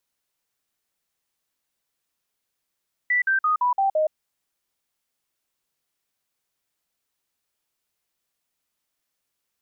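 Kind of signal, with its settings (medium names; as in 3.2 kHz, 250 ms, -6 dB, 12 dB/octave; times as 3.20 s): stepped sine 1.97 kHz down, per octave 3, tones 6, 0.12 s, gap 0.05 s -17.5 dBFS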